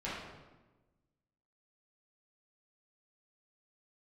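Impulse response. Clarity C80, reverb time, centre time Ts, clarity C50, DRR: 3.0 dB, 1.2 s, 77 ms, −0.5 dB, −10.0 dB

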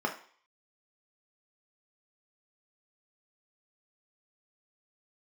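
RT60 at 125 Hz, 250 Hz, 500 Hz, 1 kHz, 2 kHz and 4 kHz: 0.35, 0.40, 0.45, 0.55, 0.55, 0.55 seconds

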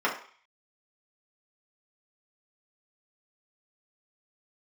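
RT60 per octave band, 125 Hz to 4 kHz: 0.25, 0.35, 0.40, 0.50, 0.55, 0.60 seconds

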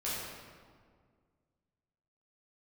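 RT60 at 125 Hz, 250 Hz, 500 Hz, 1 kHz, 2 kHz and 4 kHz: 2.4, 2.3, 2.0, 1.8, 1.4, 1.1 seconds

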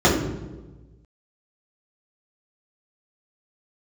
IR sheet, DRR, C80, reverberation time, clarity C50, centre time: −8.0 dB, 6.0 dB, 1.2 s, 3.0 dB, 56 ms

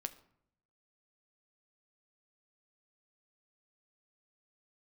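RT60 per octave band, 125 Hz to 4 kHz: 1.1, 0.90, 0.75, 0.65, 0.55, 0.40 seconds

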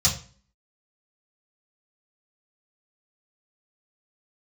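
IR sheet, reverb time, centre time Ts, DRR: 0.40 s, 19 ms, −6.0 dB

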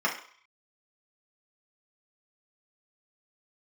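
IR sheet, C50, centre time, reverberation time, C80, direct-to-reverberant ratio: 8.0 dB, 22 ms, 0.50 s, 12.5 dB, −3.5 dB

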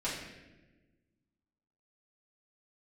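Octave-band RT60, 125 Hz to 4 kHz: 1.9, 1.8, 1.5, 0.95, 1.1, 0.85 seconds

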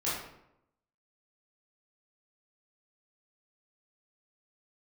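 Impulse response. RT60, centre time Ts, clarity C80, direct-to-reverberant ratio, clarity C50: 0.80 s, 63 ms, 4.5 dB, −10.0 dB, 0.5 dB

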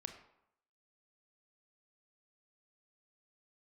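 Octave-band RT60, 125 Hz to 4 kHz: 0.65, 0.75, 0.75, 0.80, 0.65, 0.50 seconds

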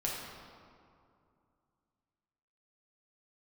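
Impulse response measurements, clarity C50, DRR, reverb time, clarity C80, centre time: 0.0 dB, −4.5 dB, 2.4 s, 2.0 dB, 99 ms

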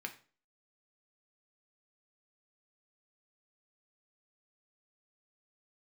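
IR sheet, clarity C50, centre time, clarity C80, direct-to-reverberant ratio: 13.5 dB, 9 ms, 18.0 dB, 4.0 dB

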